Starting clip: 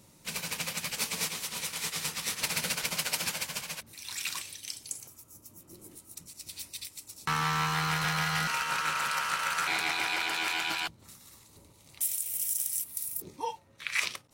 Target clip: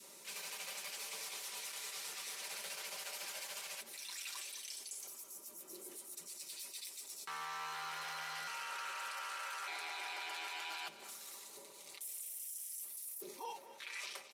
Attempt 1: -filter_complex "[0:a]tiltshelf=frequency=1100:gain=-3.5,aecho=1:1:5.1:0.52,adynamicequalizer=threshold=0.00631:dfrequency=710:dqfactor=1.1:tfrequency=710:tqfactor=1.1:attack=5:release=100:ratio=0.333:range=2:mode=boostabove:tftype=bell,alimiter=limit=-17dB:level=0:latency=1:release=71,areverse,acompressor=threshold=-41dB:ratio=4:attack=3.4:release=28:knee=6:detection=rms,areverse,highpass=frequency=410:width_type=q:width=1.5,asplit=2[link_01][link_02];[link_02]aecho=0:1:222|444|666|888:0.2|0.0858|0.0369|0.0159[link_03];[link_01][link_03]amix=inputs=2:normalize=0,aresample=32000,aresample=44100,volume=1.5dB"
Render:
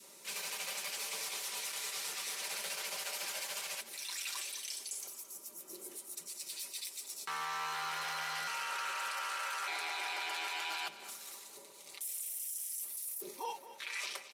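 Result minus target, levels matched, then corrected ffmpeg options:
downward compressor: peak gain reduction −5.5 dB
-filter_complex "[0:a]tiltshelf=frequency=1100:gain=-3.5,aecho=1:1:5.1:0.52,adynamicequalizer=threshold=0.00631:dfrequency=710:dqfactor=1.1:tfrequency=710:tqfactor=1.1:attack=5:release=100:ratio=0.333:range=2:mode=boostabove:tftype=bell,alimiter=limit=-17dB:level=0:latency=1:release=71,areverse,acompressor=threshold=-48dB:ratio=4:attack=3.4:release=28:knee=6:detection=rms,areverse,highpass=frequency=410:width_type=q:width=1.5,asplit=2[link_01][link_02];[link_02]aecho=0:1:222|444|666|888:0.2|0.0858|0.0369|0.0159[link_03];[link_01][link_03]amix=inputs=2:normalize=0,aresample=32000,aresample=44100,volume=1.5dB"

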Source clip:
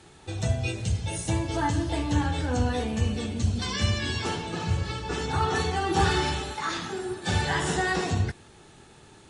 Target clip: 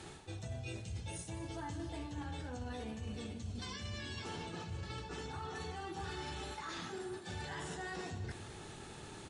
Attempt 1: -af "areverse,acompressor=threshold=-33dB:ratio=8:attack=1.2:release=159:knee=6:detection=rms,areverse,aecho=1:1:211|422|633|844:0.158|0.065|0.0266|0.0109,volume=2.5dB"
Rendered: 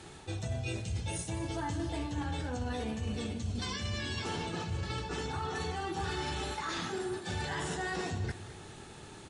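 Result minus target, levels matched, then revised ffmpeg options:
downward compressor: peak gain reduction −7.5 dB
-af "areverse,acompressor=threshold=-41.5dB:ratio=8:attack=1.2:release=159:knee=6:detection=rms,areverse,aecho=1:1:211|422|633|844:0.158|0.065|0.0266|0.0109,volume=2.5dB"

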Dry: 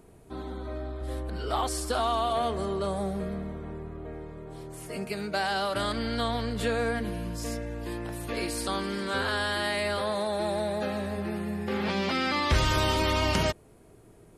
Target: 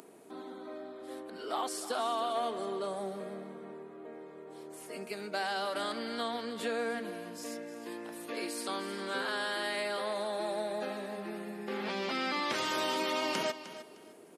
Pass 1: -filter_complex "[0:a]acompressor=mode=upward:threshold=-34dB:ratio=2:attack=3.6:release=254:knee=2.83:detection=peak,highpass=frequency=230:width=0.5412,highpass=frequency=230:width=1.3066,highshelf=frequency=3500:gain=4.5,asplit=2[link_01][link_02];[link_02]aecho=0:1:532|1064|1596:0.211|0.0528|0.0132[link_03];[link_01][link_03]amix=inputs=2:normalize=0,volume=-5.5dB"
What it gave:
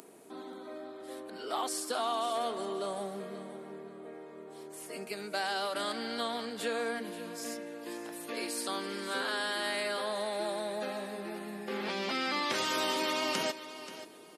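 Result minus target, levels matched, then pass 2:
echo 226 ms late; 8,000 Hz band +3.0 dB
-filter_complex "[0:a]acompressor=mode=upward:threshold=-34dB:ratio=2:attack=3.6:release=254:knee=2.83:detection=peak,highpass=frequency=230:width=0.5412,highpass=frequency=230:width=1.3066,asplit=2[link_01][link_02];[link_02]aecho=0:1:306|612|918:0.211|0.0528|0.0132[link_03];[link_01][link_03]amix=inputs=2:normalize=0,volume=-5.5dB"

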